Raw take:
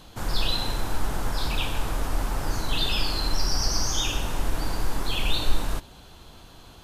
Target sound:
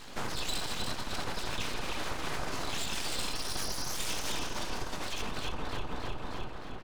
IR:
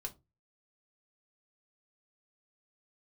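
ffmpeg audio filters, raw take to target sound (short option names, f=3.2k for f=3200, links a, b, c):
-filter_complex "[0:a]asetnsamples=n=441:p=0,asendcmd='5.21 lowpass f 1600',lowpass=7k,aecho=1:1:308|616|924|1232|1540|1848:0.596|0.286|0.137|0.0659|0.0316|0.0152,alimiter=level_in=2.5dB:limit=-24dB:level=0:latency=1:release=77,volume=-2.5dB,highpass=f=140:p=1[a];[1:a]atrim=start_sample=2205[b];[a][b]afir=irnorm=-1:irlink=0,aeval=exprs='abs(val(0))':c=same,volume=8dB"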